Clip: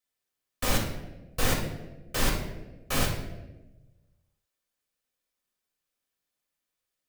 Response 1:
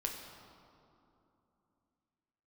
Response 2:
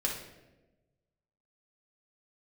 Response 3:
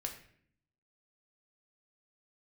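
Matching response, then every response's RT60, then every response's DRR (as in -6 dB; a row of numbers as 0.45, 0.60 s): 2; 2.9, 1.1, 0.60 s; 1.0, -3.0, 2.0 dB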